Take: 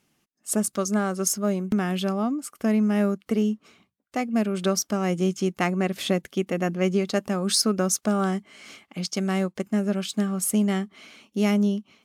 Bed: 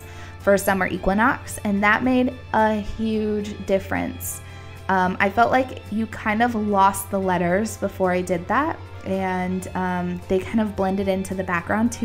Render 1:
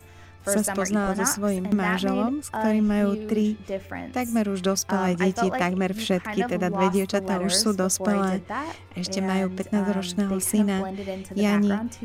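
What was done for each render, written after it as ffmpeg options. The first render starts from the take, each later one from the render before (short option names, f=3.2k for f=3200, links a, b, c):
-filter_complex "[1:a]volume=-10dB[a];[0:a][a]amix=inputs=2:normalize=0"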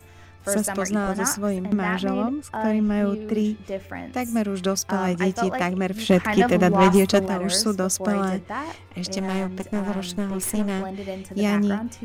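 -filter_complex "[0:a]asettb=1/sr,asplit=3[a][b][c];[a]atrim=end=1.474[d];[b]atrim=start=1.47:end=3.34,asetpts=PTS-STARTPTS,afade=t=in:d=0.004:c=qsin,afade=t=out:st=1.866:d=0.004:c=qsin,highshelf=f=5.5k:g=-8.5[e];[c]atrim=start=3.336[f];[d][e]acrossfade=d=0.004:c1=hsin:c2=qsin[g];[g][f]acrossfade=d=0.004:c1=qsin:c2=hsin,asplit=3[h][i][j];[h]afade=t=out:st=6.08:d=0.02[k];[i]aeval=exprs='0.376*sin(PI/2*1.58*val(0)/0.376)':c=same,afade=t=in:st=6.08:d=0.02,afade=t=out:st=7.25:d=0.02[l];[j]afade=t=in:st=7.25:d=0.02[m];[k][l][m]amix=inputs=3:normalize=0,asettb=1/sr,asplit=3[n][o][p];[n]atrim=end=9.184[q];[o]atrim=start=9.18:end=10.84,asetpts=PTS-STARTPTS,afade=t=in:d=0.004:c=qsin,afade=t=out:st=1.656:d=0.004:c=qsin,aeval=exprs='clip(val(0),-1,0.0447)':c=same[r];[p]atrim=start=10.836[s];[q][r]acrossfade=d=0.004:c1=hsin:c2=qsin[t];[t][s]acrossfade=d=0.004:c1=qsin:c2=hsin"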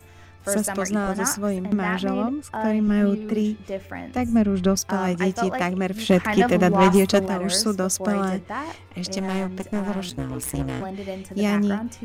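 -filter_complex "[0:a]asettb=1/sr,asplit=3[a][b][c];[a]atrim=end=2.874[d];[b]atrim=start=2.87:end=3.33,asetpts=PTS-STARTPTS,afade=t=in:d=0.004:c=qsin,afade=t=out:st=0.456:d=0.004:c=qsin,aecho=1:1:5.5:0.59,atrim=end_sample=20286[e];[c]atrim=start=3.326[f];[d][e]acrossfade=d=0.004:c1=hsin:c2=qsin[g];[g][f]acrossfade=d=0.004:c1=qsin:c2=hsin,asettb=1/sr,asplit=3[h][i][j];[h]atrim=end=4.174[k];[i]atrim=start=4.17:end=4.77,asetpts=PTS-STARTPTS,afade=t=in:d=0.004:c=qsin,afade=t=out:st=0.596:d=0.004:c=qsin,aemphasis=mode=reproduction:type=bsi[l];[j]atrim=start=4.766[m];[k][l]acrossfade=d=0.004:c1=hsin:c2=qsin[n];[n][m]acrossfade=d=0.004:c1=qsin:c2=hsin,asplit=3[o][p][q];[o]afade=t=out:st=10.09:d=0.02[r];[p]aeval=exprs='val(0)*sin(2*PI*66*n/s)':c=same,afade=t=in:st=10.09:d=0.02,afade=t=out:st=10.8:d=0.02[s];[q]afade=t=in:st=10.8:d=0.02[t];[r][s][t]amix=inputs=3:normalize=0"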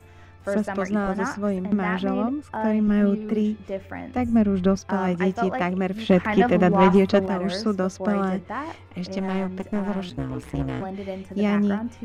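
-filter_complex "[0:a]acrossover=split=5000[a][b];[b]acompressor=threshold=-47dB:ratio=4:attack=1:release=60[c];[a][c]amix=inputs=2:normalize=0,highshelf=f=4.2k:g=-10"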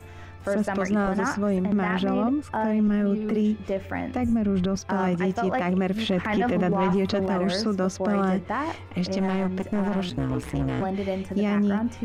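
-filter_complex "[0:a]asplit=2[a][b];[b]acompressor=threshold=-28dB:ratio=6,volume=-1.5dB[c];[a][c]amix=inputs=2:normalize=0,alimiter=limit=-16.5dB:level=0:latency=1:release=11"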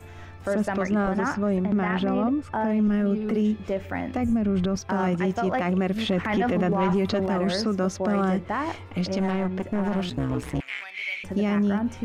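-filter_complex "[0:a]asettb=1/sr,asplit=3[a][b][c];[a]atrim=end=0.754[d];[b]atrim=start=0.75:end=2.7,asetpts=PTS-STARTPTS,afade=t=in:d=0.004:c=qsin,afade=t=out:st=1.946:d=0.004:c=qsin,highshelf=f=6.4k:g=-9[e];[c]atrim=start=2.696[f];[d][e]acrossfade=d=0.004:c1=hsin:c2=qsin[g];[g][f]acrossfade=d=0.004:c1=qsin:c2=hsin,asettb=1/sr,asplit=3[h][i][j];[h]atrim=end=9.314[k];[i]atrim=start=9.31:end=9.85,asetpts=PTS-STARTPTS,afade=t=in:d=0.004:c=qsin,afade=t=out:st=0.536:d=0.004:c=qsin,bass=f=250:g=-1,treble=f=4k:g=-6[l];[j]atrim=start=9.846[m];[k][l]acrossfade=d=0.004:c1=hsin:c2=qsin[n];[n][m]acrossfade=d=0.004:c1=qsin:c2=hsin,asettb=1/sr,asplit=3[o][p][q];[o]atrim=end=10.604[r];[p]atrim=start=10.6:end=11.24,asetpts=PTS-STARTPTS,afade=t=in:d=0.004:c=qsin,afade=t=out:st=0.636:d=0.004:c=qsin,highpass=f=2.3k:t=q:w=6.4[s];[q]atrim=start=11.236[t];[r][s]acrossfade=d=0.004:c1=hsin:c2=qsin[u];[u][t]acrossfade=d=0.004:c1=qsin:c2=hsin"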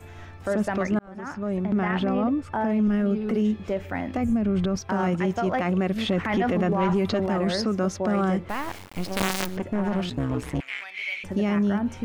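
-filter_complex "[0:a]asettb=1/sr,asplit=3[a][b][c];[a]atrim=end=8.494[d];[b]atrim=start=8.49:end=9.57,asetpts=PTS-STARTPTS,afade=t=in:d=0.004:c=qsin,afade=t=out:st=1.076:d=0.004:c=qsin,acrusher=bits=4:dc=4:mix=0:aa=0.000001[e];[c]atrim=start=9.566[f];[d][e]acrossfade=d=0.004:c1=hsin:c2=qsin[g];[g][f]acrossfade=d=0.004:c1=qsin:c2=hsin,asplit=2[h][i];[h]atrim=end=0.99,asetpts=PTS-STARTPTS,afade=t=out:st=0.986:d=0.004:c=hsin[j];[i]atrim=start=0.99,asetpts=PTS-STARTPTS,afade=t=in:d=0.79[k];[j][k]concat=n=2:v=0:a=1"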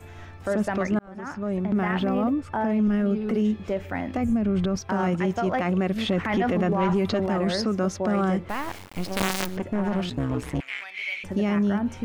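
-filter_complex "[0:a]asettb=1/sr,asplit=3[a][b][c];[a]atrim=end=1.754[d];[b]atrim=start=1.75:end=2.33,asetpts=PTS-STARTPTS,afade=t=in:d=0.004:c=qsin,afade=t=out:st=0.576:d=0.004:c=qsin,aeval=exprs='val(0)*gte(abs(val(0)),0.00335)':c=same[e];[c]atrim=start=2.326[f];[d][e]acrossfade=d=0.004:c1=hsin:c2=qsin[g];[g][f]acrossfade=d=0.004:c1=qsin:c2=hsin"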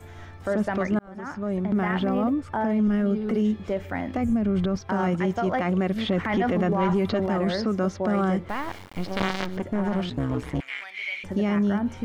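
-filter_complex "[0:a]acrossover=split=4700[a][b];[b]acompressor=threshold=-53dB:ratio=4:attack=1:release=60[c];[a][c]amix=inputs=2:normalize=0,bandreject=f=2.6k:w=14"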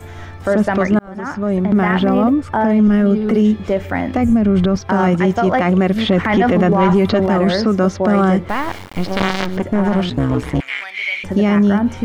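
-af "volume=10dB,alimiter=limit=-3dB:level=0:latency=1"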